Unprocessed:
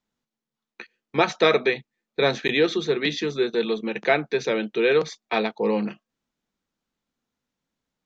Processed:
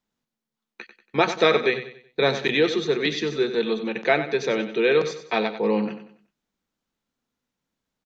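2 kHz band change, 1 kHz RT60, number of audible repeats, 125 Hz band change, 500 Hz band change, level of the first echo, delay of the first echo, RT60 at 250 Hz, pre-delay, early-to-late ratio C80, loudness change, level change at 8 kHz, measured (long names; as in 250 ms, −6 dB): +0.5 dB, no reverb audible, 3, +0.5 dB, +0.5 dB, −11.0 dB, 94 ms, no reverb audible, no reverb audible, no reverb audible, +0.5 dB, can't be measured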